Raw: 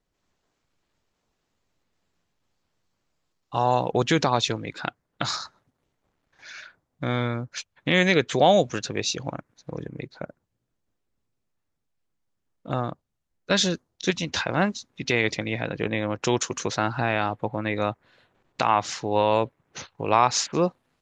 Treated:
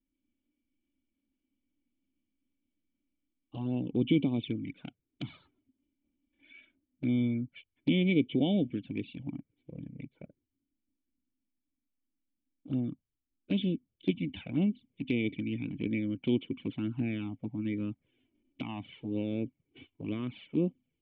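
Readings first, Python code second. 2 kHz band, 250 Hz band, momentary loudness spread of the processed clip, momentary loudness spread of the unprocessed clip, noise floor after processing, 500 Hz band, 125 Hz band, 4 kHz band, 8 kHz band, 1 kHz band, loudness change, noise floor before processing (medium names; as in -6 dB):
-16.0 dB, -1.0 dB, 16 LU, 18 LU, under -85 dBFS, -13.5 dB, -5.0 dB, -15.0 dB, under -40 dB, -28.0 dB, -8.0 dB, -78 dBFS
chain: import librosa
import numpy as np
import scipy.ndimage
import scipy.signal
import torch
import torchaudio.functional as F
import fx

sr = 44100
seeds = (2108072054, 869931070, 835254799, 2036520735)

y = fx.formant_cascade(x, sr, vowel='i')
y = fx.env_flanger(y, sr, rest_ms=3.5, full_db=-30.5)
y = y * 10.0 ** (5.5 / 20.0)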